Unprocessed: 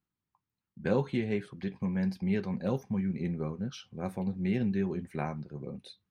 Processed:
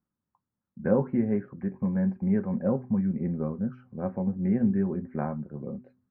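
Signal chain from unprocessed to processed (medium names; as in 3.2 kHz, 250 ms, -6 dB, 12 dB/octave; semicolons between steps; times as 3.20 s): inverse Chebyshev low-pass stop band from 3.3 kHz, stop band 40 dB; de-hum 126.1 Hz, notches 3; small resonant body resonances 230/550 Hz, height 7 dB; trim +1.5 dB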